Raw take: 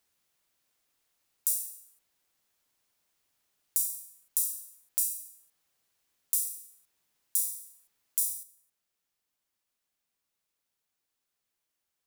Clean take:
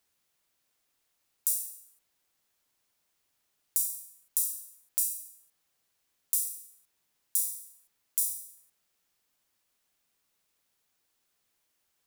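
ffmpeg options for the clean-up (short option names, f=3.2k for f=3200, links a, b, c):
-af "asetnsamples=n=441:p=0,asendcmd='8.43 volume volume 7.5dB',volume=0dB"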